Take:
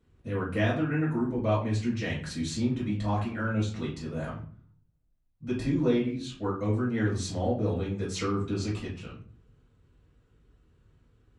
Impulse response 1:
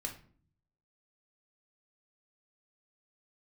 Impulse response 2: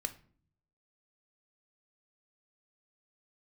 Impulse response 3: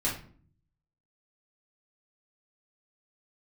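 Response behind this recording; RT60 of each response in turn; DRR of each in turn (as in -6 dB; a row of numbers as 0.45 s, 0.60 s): 3; 0.50 s, 0.50 s, 0.50 s; 2.0 dB, 8.5 dB, -6.0 dB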